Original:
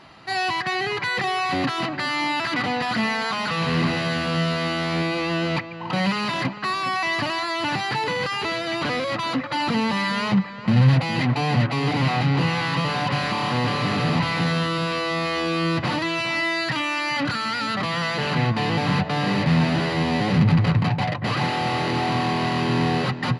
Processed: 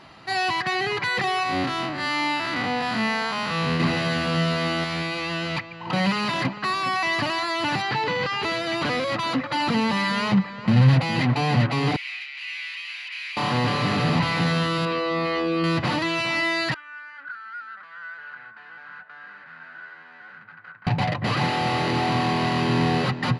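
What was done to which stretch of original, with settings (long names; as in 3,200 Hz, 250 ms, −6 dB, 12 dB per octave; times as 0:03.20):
0:01.43–0:03.80: spectrum smeared in time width 97 ms
0:04.84–0:05.87: parametric band 340 Hz −7.5 dB 2.7 octaves
0:07.82–0:08.43: low-pass filter 5,100 Hz
0:11.96–0:13.37: four-pole ladder high-pass 2,100 Hz, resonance 65%
0:14.85–0:15.64: spectral envelope exaggerated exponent 1.5
0:16.74–0:20.87: resonant band-pass 1,500 Hz, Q 15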